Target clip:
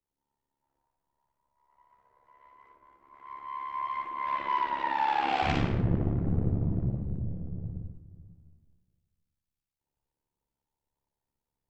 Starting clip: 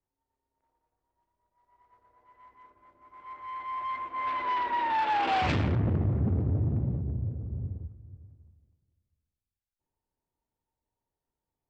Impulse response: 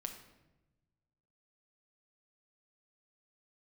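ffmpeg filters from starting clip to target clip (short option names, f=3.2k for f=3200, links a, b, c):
-filter_complex "[0:a]tremolo=f=70:d=0.889,asplit=2[a][b];[1:a]atrim=start_sample=2205,atrim=end_sample=6615,adelay=58[c];[b][c]afir=irnorm=-1:irlink=0,volume=2dB[d];[a][d]amix=inputs=2:normalize=0"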